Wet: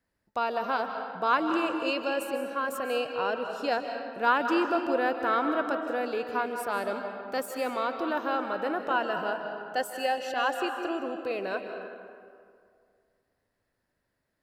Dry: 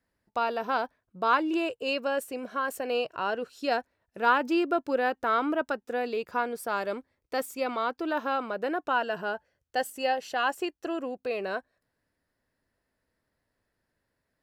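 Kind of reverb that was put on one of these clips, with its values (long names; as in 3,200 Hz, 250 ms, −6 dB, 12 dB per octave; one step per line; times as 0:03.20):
comb and all-pass reverb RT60 2.2 s, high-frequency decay 0.55×, pre-delay 115 ms, DRR 5 dB
level −1 dB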